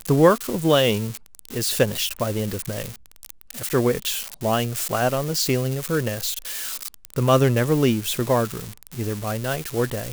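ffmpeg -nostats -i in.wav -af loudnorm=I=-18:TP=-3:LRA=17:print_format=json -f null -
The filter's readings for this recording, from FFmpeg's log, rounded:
"input_i" : "-22.5",
"input_tp" : "-3.3",
"input_lra" : "3.5",
"input_thresh" : "-32.9",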